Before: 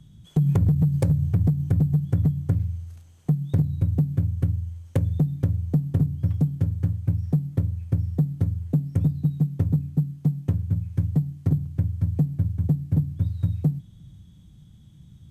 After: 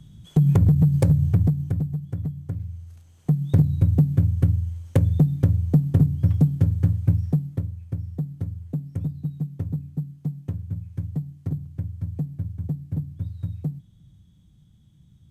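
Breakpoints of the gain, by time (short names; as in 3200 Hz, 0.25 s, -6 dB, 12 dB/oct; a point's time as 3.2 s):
1.33 s +3 dB
1.99 s -7.5 dB
2.53 s -7.5 dB
3.55 s +4 dB
7.12 s +4 dB
7.75 s -6 dB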